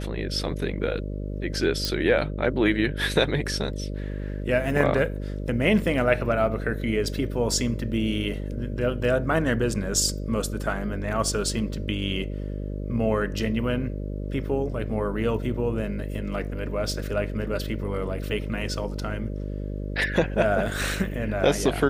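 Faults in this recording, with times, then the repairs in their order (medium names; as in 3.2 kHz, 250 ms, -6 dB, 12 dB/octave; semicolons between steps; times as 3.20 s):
buzz 50 Hz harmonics 12 -31 dBFS
1.85 s: pop -11 dBFS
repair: de-click; de-hum 50 Hz, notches 12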